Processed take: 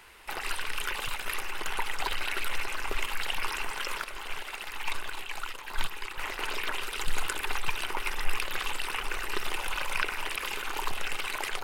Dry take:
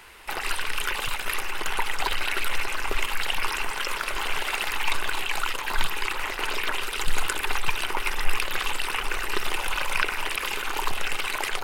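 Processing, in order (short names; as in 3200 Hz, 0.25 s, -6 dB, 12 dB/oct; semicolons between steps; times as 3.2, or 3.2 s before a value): 4.04–6.18 upward expander 1.5:1, over -28 dBFS; gain -5 dB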